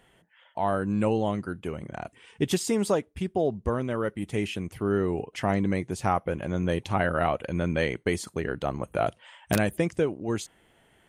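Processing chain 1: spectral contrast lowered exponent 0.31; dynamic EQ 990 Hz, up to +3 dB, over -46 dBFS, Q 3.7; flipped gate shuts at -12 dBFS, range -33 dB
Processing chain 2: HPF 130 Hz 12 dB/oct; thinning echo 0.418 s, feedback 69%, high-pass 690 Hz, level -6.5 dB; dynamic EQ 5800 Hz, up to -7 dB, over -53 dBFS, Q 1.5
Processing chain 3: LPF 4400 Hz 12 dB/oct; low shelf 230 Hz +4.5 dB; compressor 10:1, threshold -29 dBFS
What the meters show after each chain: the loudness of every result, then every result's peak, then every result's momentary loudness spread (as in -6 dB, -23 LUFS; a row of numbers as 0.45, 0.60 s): -32.0, -28.5, -35.5 LUFS; -8.0, -9.5, -17.5 dBFS; 11, 8, 4 LU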